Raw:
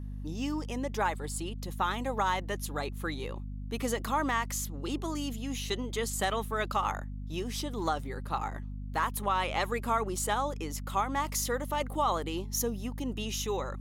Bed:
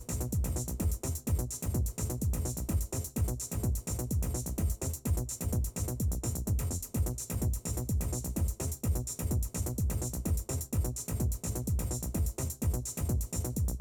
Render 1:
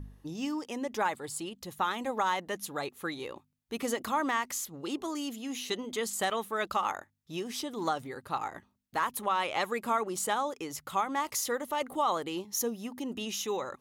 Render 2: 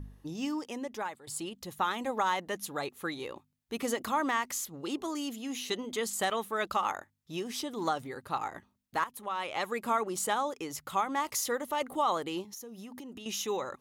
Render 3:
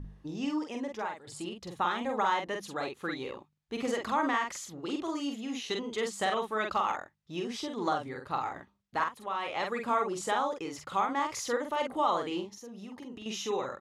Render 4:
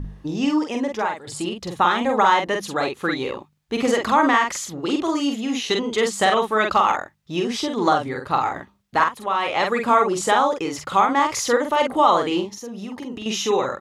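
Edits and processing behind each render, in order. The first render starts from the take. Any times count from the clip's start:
hum removal 50 Hz, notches 5
0:00.59–0:01.27: fade out, to −15 dB; 0:09.04–0:09.90: fade in linear, from −12 dB; 0:12.43–0:13.26: downward compressor 10 to 1, threshold −41 dBFS
high-frequency loss of the air 80 metres; double-tracking delay 46 ms −4 dB
level +12 dB

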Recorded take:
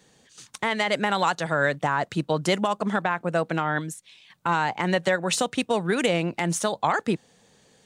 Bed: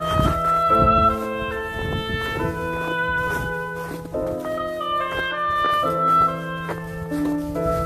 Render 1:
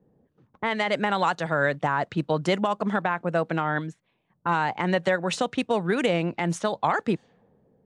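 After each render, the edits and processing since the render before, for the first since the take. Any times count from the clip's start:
low-pass filter 3,000 Hz 6 dB per octave
low-pass that shuts in the quiet parts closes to 480 Hz, open at −22 dBFS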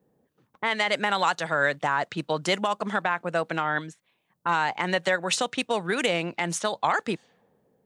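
spectral tilt +2.5 dB per octave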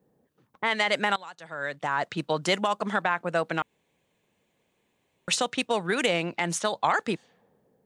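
0:01.16–0:02.06: fade in quadratic, from −20.5 dB
0:03.62–0:05.28: fill with room tone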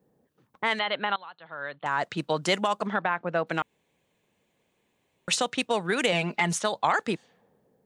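0:00.79–0:01.86: Chebyshev low-pass with heavy ripple 4,300 Hz, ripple 6 dB
0:02.87–0:03.47: high-frequency loss of the air 210 metres
0:06.12–0:06.53: comb filter 4.8 ms, depth 82%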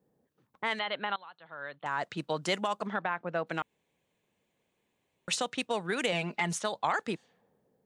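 level −5.5 dB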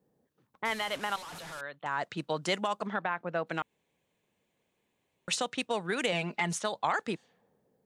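0:00.65–0:01.61: linear delta modulator 64 kbit/s, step −38 dBFS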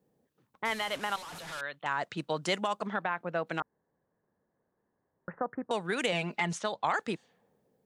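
0:01.46–0:01.93: dynamic equaliser 3,100 Hz, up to +7 dB, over −52 dBFS, Q 0.7
0:03.60–0:05.71: Butterworth low-pass 1,800 Hz 72 dB per octave
0:06.45–0:06.87: high-frequency loss of the air 59 metres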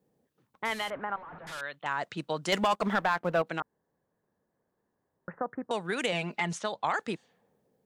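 0:00.90–0:01.47: low-pass filter 1,700 Hz 24 dB per octave
0:02.52–0:03.42: leveller curve on the samples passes 2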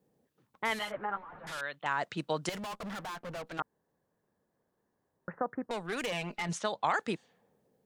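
0:00.79–0:01.44: string-ensemble chorus
0:02.49–0:03.59: tube saturation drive 38 dB, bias 0.4
0:05.66–0:06.49: tube saturation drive 29 dB, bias 0.5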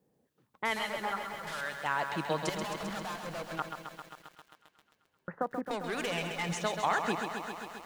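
delay with a high-pass on its return 129 ms, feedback 79%, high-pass 1,600 Hz, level −13.5 dB
feedback echo at a low word length 133 ms, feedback 80%, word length 9 bits, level −7 dB

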